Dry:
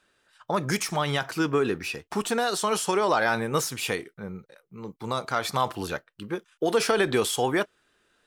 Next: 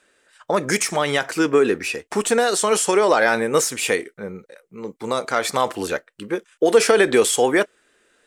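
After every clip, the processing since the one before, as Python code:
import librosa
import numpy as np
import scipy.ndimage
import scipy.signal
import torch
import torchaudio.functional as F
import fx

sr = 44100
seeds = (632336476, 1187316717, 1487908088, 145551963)

y = fx.graphic_eq_10(x, sr, hz=(125, 250, 500, 2000, 8000), db=(-5, 5, 9, 8, 11))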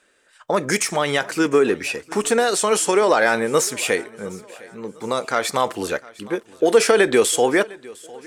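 y = fx.echo_feedback(x, sr, ms=706, feedback_pct=43, wet_db=-22.0)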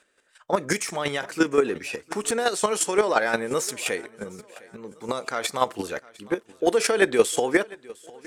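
y = fx.chopper(x, sr, hz=5.7, depth_pct=60, duty_pct=15)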